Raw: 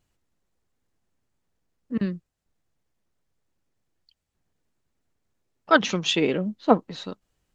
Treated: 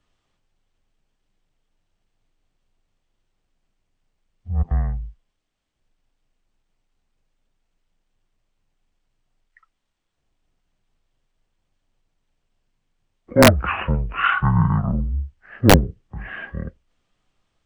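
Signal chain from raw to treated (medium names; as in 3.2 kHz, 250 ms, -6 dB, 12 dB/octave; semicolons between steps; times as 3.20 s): speed mistake 78 rpm record played at 33 rpm; frequency shift -21 Hz; integer overflow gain 5.5 dB; trim +4.5 dB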